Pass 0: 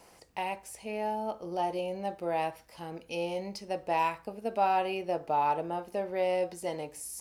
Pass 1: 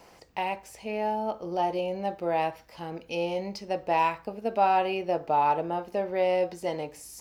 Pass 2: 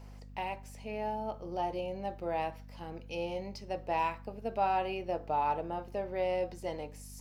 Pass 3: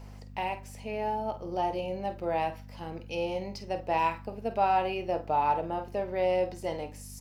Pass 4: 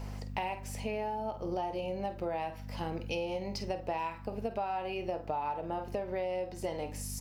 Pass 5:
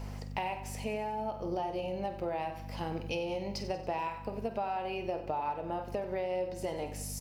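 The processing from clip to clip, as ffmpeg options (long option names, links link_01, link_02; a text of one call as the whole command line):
ffmpeg -i in.wav -af "equalizer=frequency=10000:width=1.3:gain=-11,volume=4dB" out.wav
ffmpeg -i in.wav -af "aeval=exprs='val(0)+0.00891*(sin(2*PI*50*n/s)+sin(2*PI*2*50*n/s)/2+sin(2*PI*3*50*n/s)/3+sin(2*PI*4*50*n/s)/4+sin(2*PI*5*50*n/s)/5)':channel_layout=same,volume=-7dB" out.wav
ffmpeg -i in.wav -filter_complex "[0:a]asplit=2[link_01][link_02];[link_02]adelay=49,volume=-12dB[link_03];[link_01][link_03]amix=inputs=2:normalize=0,volume=4dB" out.wav
ffmpeg -i in.wav -af "acompressor=threshold=-37dB:ratio=12,volume=5.5dB" out.wav
ffmpeg -i in.wav -af "aecho=1:1:93|186|279|372|465:0.224|0.119|0.0629|0.0333|0.0177" out.wav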